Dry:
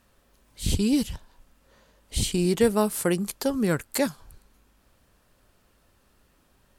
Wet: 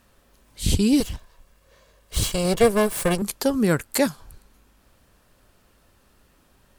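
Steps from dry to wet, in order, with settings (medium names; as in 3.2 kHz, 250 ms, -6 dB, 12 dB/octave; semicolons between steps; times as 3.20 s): 1.00–3.22 s: comb filter that takes the minimum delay 1.8 ms; trim +4 dB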